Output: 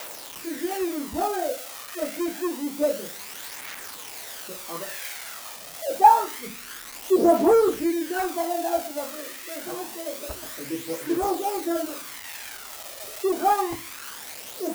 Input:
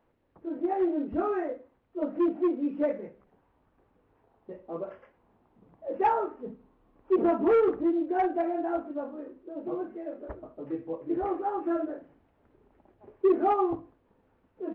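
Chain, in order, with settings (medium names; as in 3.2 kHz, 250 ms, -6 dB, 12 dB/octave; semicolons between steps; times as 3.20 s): zero-crossing glitches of -22.5 dBFS; phaser 0.27 Hz, delay 1.7 ms, feedback 40%; sweeping bell 0.69 Hz 570–2100 Hz +8 dB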